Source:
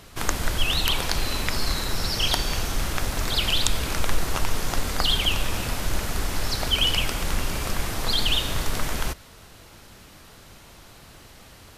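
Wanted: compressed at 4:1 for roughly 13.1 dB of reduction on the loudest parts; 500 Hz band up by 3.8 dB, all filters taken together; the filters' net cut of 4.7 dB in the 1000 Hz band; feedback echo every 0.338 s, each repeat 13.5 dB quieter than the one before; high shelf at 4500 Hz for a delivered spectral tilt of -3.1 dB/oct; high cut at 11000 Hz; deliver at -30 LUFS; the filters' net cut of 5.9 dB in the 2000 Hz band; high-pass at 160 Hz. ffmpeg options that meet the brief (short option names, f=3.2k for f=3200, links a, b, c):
-af "highpass=160,lowpass=11k,equalizer=f=500:t=o:g=7,equalizer=f=1k:t=o:g=-7,equalizer=f=2k:t=o:g=-5,highshelf=f=4.5k:g=-5.5,acompressor=threshold=-39dB:ratio=4,aecho=1:1:338|676:0.211|0.0444,volume=10dB"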